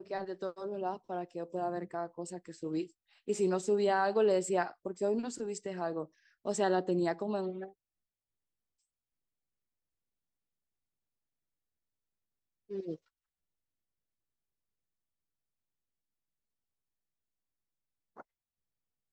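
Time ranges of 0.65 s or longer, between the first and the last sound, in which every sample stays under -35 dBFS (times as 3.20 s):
7.64–12.72 s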